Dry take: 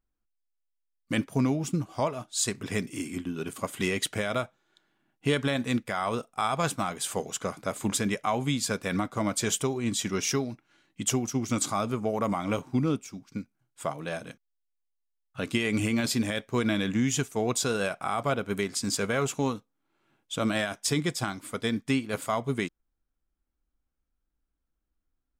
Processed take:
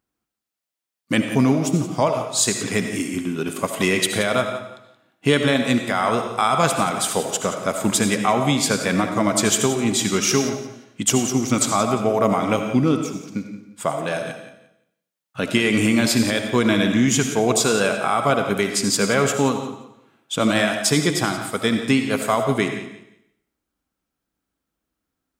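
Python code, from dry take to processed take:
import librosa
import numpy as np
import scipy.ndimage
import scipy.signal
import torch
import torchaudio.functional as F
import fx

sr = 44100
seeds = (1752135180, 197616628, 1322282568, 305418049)

y = scipy.signal.sosfilt(scipy.signal.butter(2, 120.0, 'highpass', fs=sr, output='sos'), x)
y = fx.echo_feedback(y, sr, ms=175, feedback_pct=23, wet_db=-14)
y = fx.rev_freeverb(y, sr, rt60_s=0.72, hf_ratio=0.85, predelay_ms=40, drr_db=6.0)
y = y * 10.0 ** (8.5 / 20.0)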